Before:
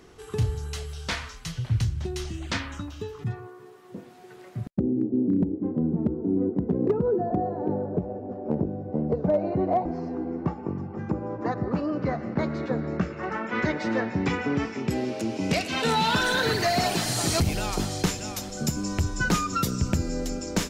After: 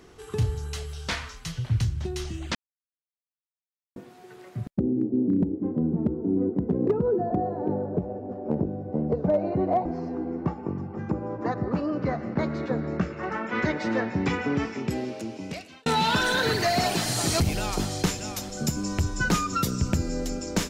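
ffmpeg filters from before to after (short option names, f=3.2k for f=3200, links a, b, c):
-filter_complex "[0:a]asplit=4[a][b][c][d];[a]atrim=end=2.55,asetpts=PTS-STARTPTS,afade=t=out:st=2.546:d=0.004:c=hsin[e];[b]atrim=start=2.55:end=3.96,asetpts=PTS-STARTPTS,volume=0[f];[c]atrim=start=3.96:end=15.86,asetpts=PTS-STARTPTS,afade=t=in:d=0.004:c=hsin,afade=t=out:st=10.76:d=1.14[g];[d]atrim=start=15.86,asetpts=PTS-STARTPTS,afade=t=in:d=0.004:c=hsin[h];[e][f][g][h]concat=n=4:v=0:a=1"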